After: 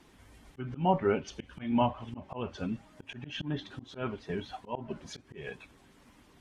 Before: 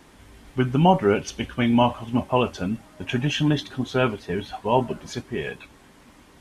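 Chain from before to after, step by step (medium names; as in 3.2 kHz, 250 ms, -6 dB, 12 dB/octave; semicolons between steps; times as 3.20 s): coarse spectral quantiser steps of 15 dB; low-pass that closes with the level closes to 2.7 kHz, closed at -17.5 dBFS; slow attack 173 ms; trim -7.5 dB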